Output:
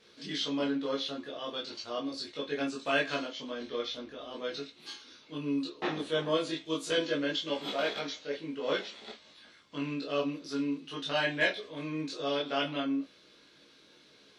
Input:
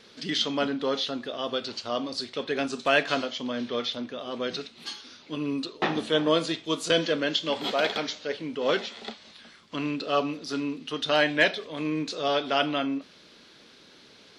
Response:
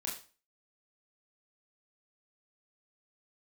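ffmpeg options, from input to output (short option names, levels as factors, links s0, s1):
-filter_complex "[0:a]asettb=1/sr,asplit=3[s0][s1][s2];[s0]atrim=end=3.484[s3];[s1]atrim=start=3.48:end=4.33,asetpts=PTS-STARTPTS,afade=t=in:d=0.004:c=qsin,afade=t=out:st=0.846:d=0.004:c=qsin,aeval=exprs='val(0)+0.00112*(sin(2*PI*60*n/s)+sin(2*PI*2*60*n/s)/2+sin(2*PI*3*60*n/s)/3+sin(2*PI*4*60*n/s)/4+sin(2*PI*5*60*n/s)/5)':c=same[s4];[s2]atrim=start=4.326[s5];[s3][s4]acrossfade=d=0.004:c1=hsin:c2=qsin[s6];[s6][s5]acrossfade=d=0.004:c1=qsin:c2=hsin[s7];[1:a]atrim=start_sample=2205,afade=t=out:st=0.13:d=0.01,atrim=end_sample=6174,asetrate=70560,aresample=44100[s8];[s7][s8]afir=irnorm=-1:irlink=0,volume=0.708"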